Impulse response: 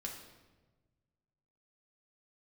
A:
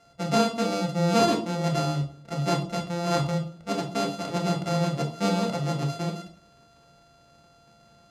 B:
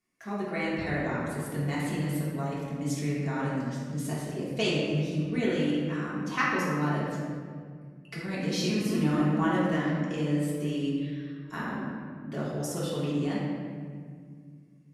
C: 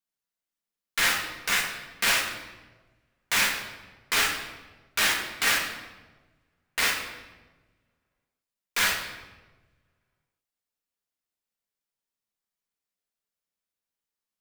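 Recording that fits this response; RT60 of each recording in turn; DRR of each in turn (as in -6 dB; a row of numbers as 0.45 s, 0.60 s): C; 0.55 s, 2.0 s, 1.3 s; 1.5 dB, -8.0 dB, -1.0 dB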